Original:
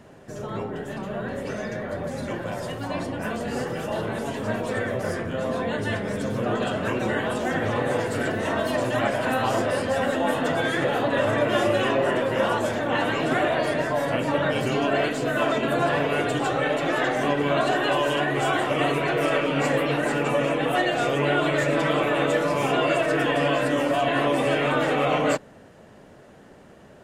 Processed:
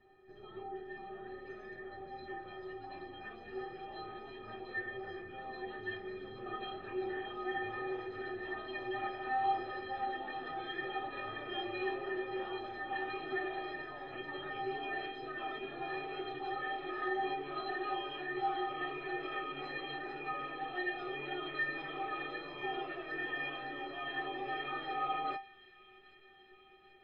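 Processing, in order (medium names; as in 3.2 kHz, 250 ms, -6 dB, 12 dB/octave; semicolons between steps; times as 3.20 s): elliptic low-pass 4 kHz, stop band 60 dB; bass shelf 120 Hz +5 dB; inharmonic resonator 370 Hz, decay 0.32 s, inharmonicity 0.03; feedback echo behind a high-pass 781 ms, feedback 69%, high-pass 2.3 kHz, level -16 dB; trim +2 dB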